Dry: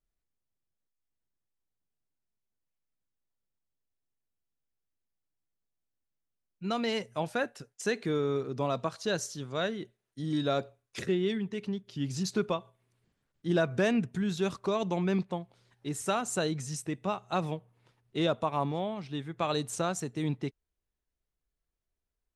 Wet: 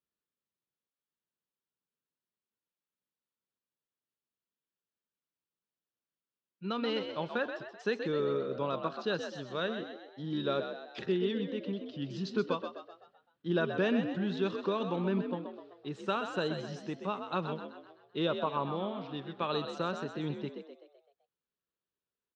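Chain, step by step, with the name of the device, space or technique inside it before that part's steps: kitchen radio (speaker cabinet 190–3900 Hz, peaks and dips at 290 Hz -4 dB, 710 Hz -10 dB, 2100 Hz -9 dB); 14.9–15.39 high shelf 4000 Hz -9.5 dB; frequency-shifting echo 0.128 s, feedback 48%, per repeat +56 Hz, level -8 dB

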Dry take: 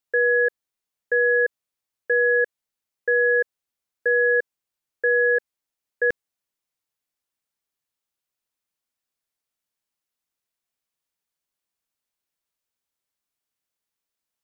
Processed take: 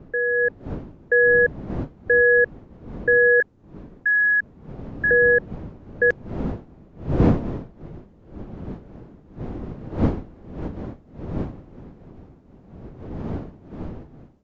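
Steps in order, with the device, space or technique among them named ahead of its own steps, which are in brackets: 3.4–5.11 inverse Chebyshev high-pass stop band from 640 Hz, stop band 40 dB; smartphone video outdoors (wind noise 270 Hz; AGC gain up to 8 dB; gain -4 dB; AAC 48 kbps 16000 Hz)

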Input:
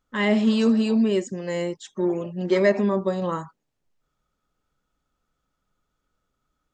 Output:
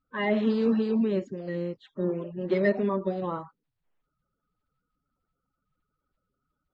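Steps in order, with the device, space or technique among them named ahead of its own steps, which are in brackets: clip after many re-uploads (LPF 4000 Hz 24 dB/oct; bin magnitudes rounded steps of 30 dB); bell 3500 Hz -4.5 dB 1.8 oct; gain -4 dB

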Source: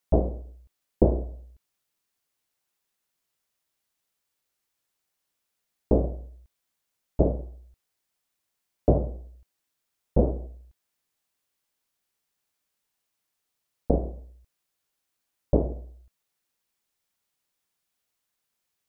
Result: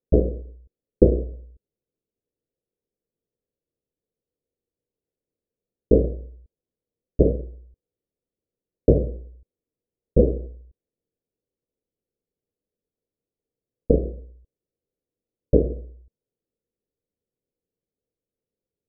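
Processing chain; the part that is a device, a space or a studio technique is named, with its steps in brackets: under water (LPF 470 Hz 24 dB/oct; bell 480 Hz +9 dB 0.49 oct); gain +3.5 dB

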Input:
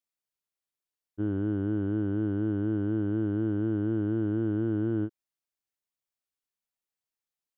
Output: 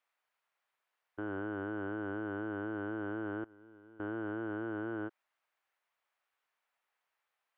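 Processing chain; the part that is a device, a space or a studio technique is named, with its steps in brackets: DJ mixer with the lows and highs turned down (three-band isolator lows -24 dB, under 590 Hz, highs -21 dB, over 2500 Hz; limiter -47.5 dBFS, peak gain reduction 11 dB); 3.44–4 gate -51 dBFS, range -23 dB; gain +17 dB

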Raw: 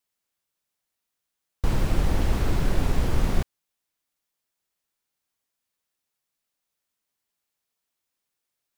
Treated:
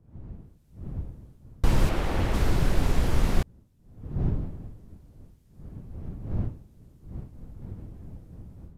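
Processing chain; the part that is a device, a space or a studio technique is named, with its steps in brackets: 1.89–2.34 tone controls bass -8 dB, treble -8 dB; smartphone video outdoors (wind noise 120 Hz -40 dBFS; AGC gain up to 15 dB; gain -8.5 dB; AAC 64 kbps 32000 Hz)

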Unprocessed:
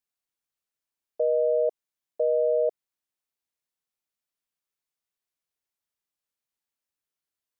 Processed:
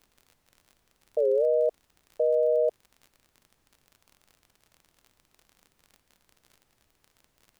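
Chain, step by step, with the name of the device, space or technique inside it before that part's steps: warped LP (record warp 33 1/3 rpm, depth 250 cents; crackle 44/s -41 dBFS; pink noise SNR 40 dB)

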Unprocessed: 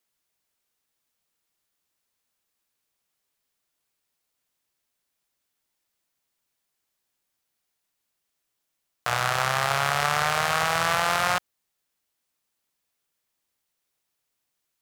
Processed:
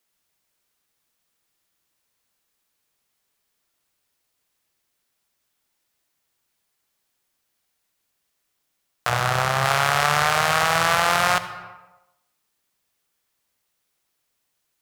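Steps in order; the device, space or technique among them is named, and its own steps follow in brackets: compressed reverb return (on a send at -4.5 dB: reverb RT60 0.90 s, pre-delay 62 ms + compressor 10:1, threshold -29 dBFS, peak gain reduction 10.5 dB); 9.09–9.65 on the sum: tilt shelf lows +3.5 dB, about 640 Hz; gain +4 dB

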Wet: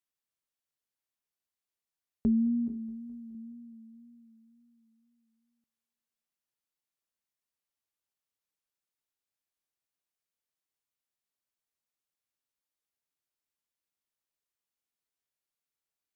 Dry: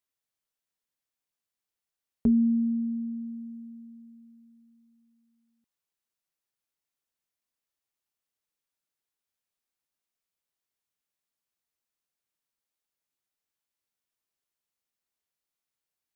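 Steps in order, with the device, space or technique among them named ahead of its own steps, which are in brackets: multi-head tape echo (multi-head echo 0.211 s, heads first and second, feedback 42%, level -24 dB; wow and flutter); 2.66–3.35 flutter echo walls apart 3.3 m, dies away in 0.31 s; gain -4 dB

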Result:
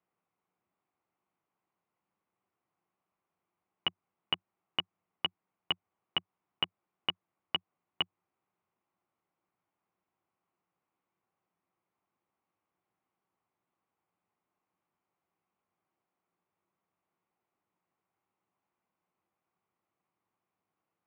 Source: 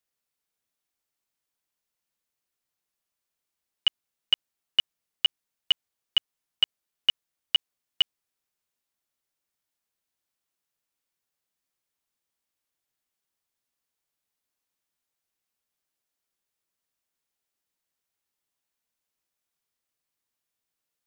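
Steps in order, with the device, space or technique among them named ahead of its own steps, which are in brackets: bass amplifier (compressor, threshold -22 dBFS, peak gain reduction 6.5 dB; speaker cabinet 90–2200 Hz, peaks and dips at 97 Hz +6 dB, 180 Hz +9 dB, 350 Hz +7 dB, 780 Hz +6 dB, 1100 Hz +6 dB, 1700 Hz -7 dB); gain +4.5 dB

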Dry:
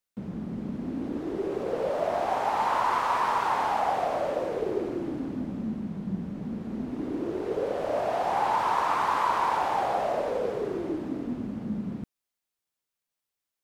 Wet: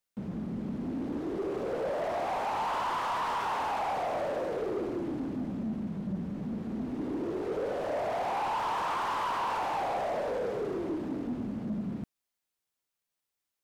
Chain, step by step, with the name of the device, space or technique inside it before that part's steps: saturation between pre-emphasis and de-emphasis (high shelf 3000 Hz +9.5 dB; soft clip -27 dBFS, distortion -10 dB; high shelf 3000 Hz -9.5 dB)

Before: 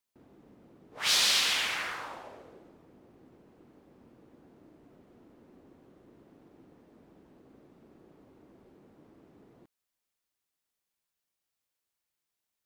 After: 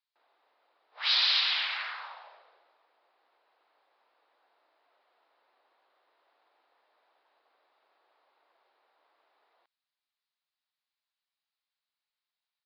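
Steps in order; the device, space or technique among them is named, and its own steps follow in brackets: musical greeting card (downsampling 11025 Hz; HPF 740 Hz 24 dB/oct; bell 3900 Hz +5.5 dB 0.26 oct); gain -1.5 dB

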